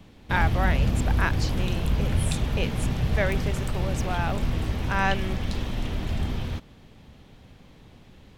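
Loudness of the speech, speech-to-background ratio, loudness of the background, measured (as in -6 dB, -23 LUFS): -31.0 LUFS, -3.0 dB, -28.0 LUFS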